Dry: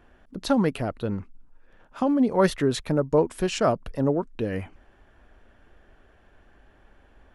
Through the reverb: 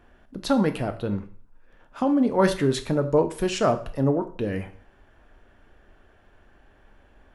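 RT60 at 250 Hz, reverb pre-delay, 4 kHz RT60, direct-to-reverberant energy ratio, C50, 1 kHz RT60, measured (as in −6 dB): 0.50 s, 5 ms, 0.45 s, 8.0 dB, 13.5 dB, 0.50 s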